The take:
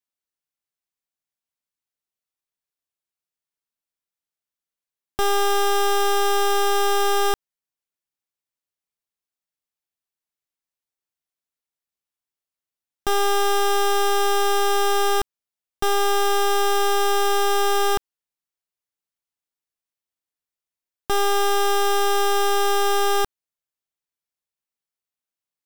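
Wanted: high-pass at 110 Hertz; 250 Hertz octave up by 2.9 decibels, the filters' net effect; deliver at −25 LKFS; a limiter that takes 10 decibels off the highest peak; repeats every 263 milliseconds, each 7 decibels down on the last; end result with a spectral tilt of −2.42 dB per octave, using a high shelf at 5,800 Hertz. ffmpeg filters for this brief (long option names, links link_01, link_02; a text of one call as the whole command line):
ffmpeg -i in.wav -af "highpass=110,equalizer=frequency=250:width_type=o:gain=8,highshelf=frequency=5800:gain=-6,alimiter=limit=-20.5dB:level=0:latency=1,aecho=1:1:263|526|789|1052|1315:0.447|0.201|0.0905|0.0407|0.0183,volume=4dB" out.wav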